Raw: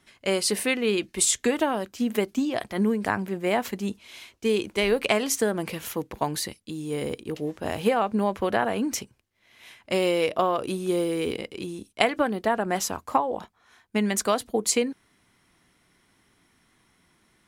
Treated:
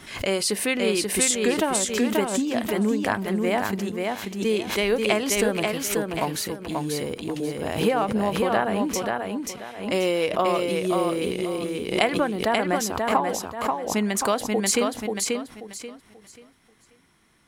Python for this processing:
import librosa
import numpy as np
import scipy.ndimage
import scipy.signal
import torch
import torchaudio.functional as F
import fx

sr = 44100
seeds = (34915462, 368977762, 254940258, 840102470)

p1 = x + fx.echo_feedback(x, sr, ms=535, feedback_pct=27, wet_db=-3.5, dry=0)
y = fx.pre_swell(p1, sr, db_per_s=89.0)